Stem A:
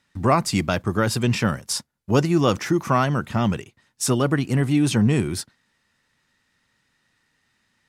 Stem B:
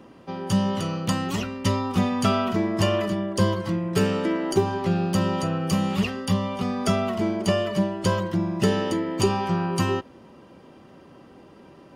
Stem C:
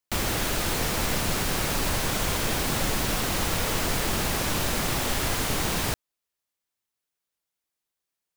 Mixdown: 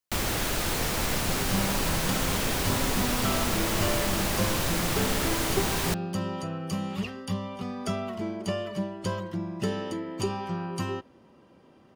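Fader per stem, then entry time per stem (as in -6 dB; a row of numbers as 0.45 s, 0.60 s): mute, -8.0 dB, -1.5 dB; mute, 1.00 s, 0.00 s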